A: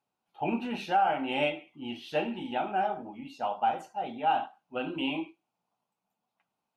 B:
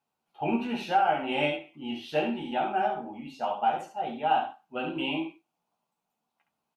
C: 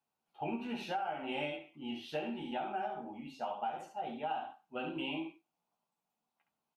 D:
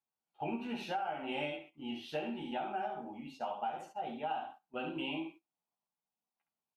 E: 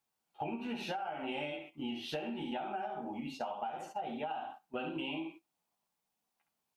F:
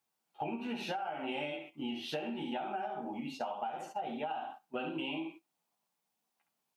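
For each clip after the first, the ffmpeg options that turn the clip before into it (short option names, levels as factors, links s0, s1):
-af "aecho=1:1:13|68:0.562|0.501"
-af "acompressor=threshold=0.0355:ratio=4,volume=0.531"
-af "agate=range=0.316:threshold=0.00224:ratio=16:detection=peak"
-af "acompressor=threshold=0.00631:ratio=6,volume=2.51"
-af "highpass=120,volume=1.12"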